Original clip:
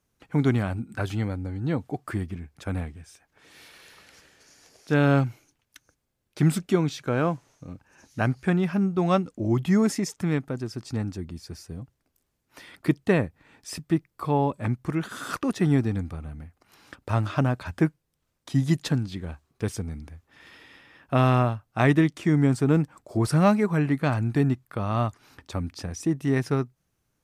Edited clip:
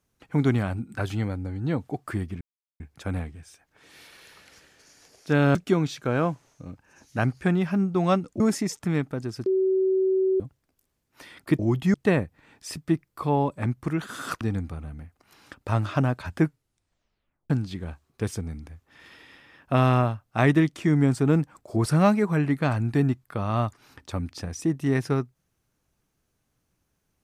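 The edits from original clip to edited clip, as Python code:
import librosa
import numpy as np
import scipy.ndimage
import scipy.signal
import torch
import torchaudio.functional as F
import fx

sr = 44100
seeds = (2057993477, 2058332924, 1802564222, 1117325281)

y = fx.edit(x, sr, fx.insert_silence(at_s=2.41, length_s=0.39),
    fx.cut(start_s=5.16, length_s=1.41),
    fx.move(start_s=9.42, length_s=0.35, to_s=12.96),
    fx.bleep(start_s=10.83, length_s=0.94, hz=379.0, db=-19.0),
    fx.cut(start_s=15.43, length_s=0.39),
    fx.tape_stop(start_s=17.86, length_s=1.05), tone=tone)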